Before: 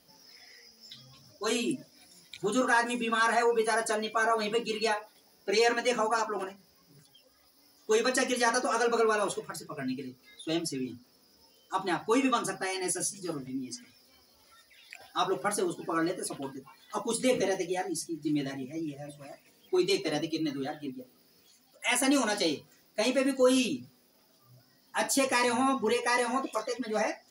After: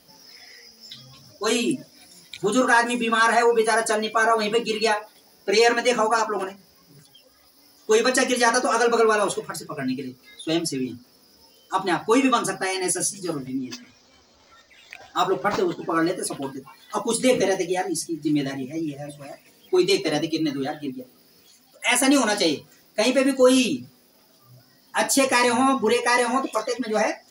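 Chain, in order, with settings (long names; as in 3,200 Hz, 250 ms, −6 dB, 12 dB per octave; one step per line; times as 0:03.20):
0:13.58–0:15.97: linearly interpolated sample-rate reduction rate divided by 4×
level +7.5 dB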